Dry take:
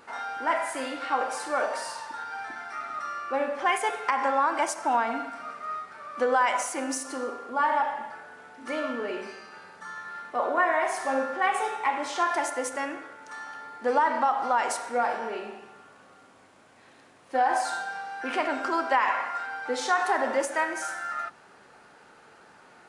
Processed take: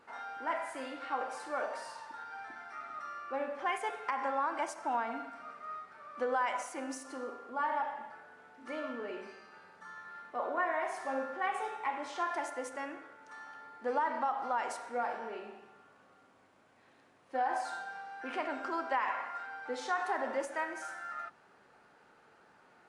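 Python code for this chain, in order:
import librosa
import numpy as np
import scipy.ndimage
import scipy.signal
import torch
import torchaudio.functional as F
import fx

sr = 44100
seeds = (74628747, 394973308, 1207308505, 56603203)

y = fx.high_shelf(x, sr, hz=4700.0, db=-7.5)
y = F.gain(torch.from_numpy(y), -8.5).numpy()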